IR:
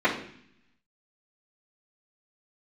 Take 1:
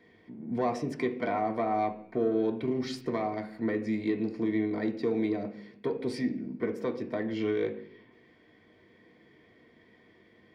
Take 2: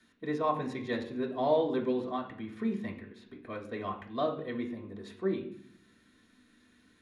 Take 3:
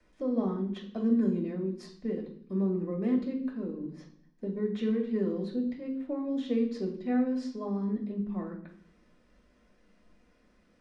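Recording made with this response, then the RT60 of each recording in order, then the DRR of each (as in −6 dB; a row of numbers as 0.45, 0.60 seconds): 3; 0.60, 0.60, 0.60 seconds; 1.0, −4.5, −14.5 decibels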